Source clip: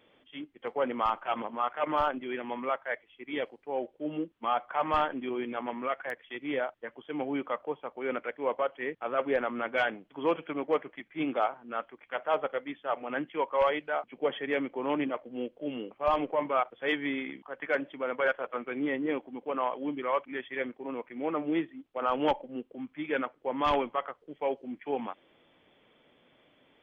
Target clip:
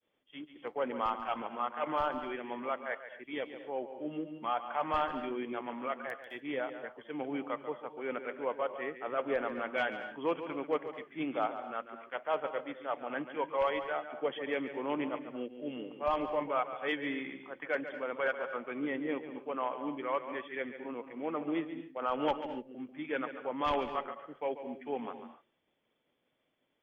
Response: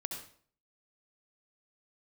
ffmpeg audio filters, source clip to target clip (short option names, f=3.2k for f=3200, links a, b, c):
-filter_complex "[0:a]agate=range=-33dB:threshold=-55dB:ratio=3:detection=peak,asplit=2[a][b];[1:a]atrim=start_sample=2205,afade=t=out:st=0.21:d=0.01,atrim=end_sample=9702,adelay=141[c];[b][c]afir=irnorm=-1:irlink=0,volume=-9dB[d];[a][d]amix=inputs=2:normalize=0,volume=-4.5dB"